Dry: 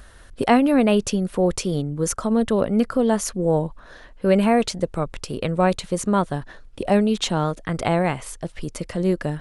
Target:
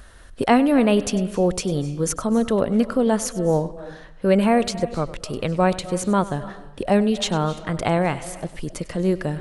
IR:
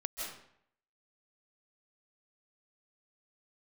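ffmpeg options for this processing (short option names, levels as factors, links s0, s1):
-filter_complex "[0:a]asplit=2[s0][s1];[1:a]atrim=start_sample=2205,adelay=99[s2];[s1][s2]afir=irnorm=-1:irlink=0,volume=0.168[s3];[s0][s3]amix=inputs=2:normalize=0"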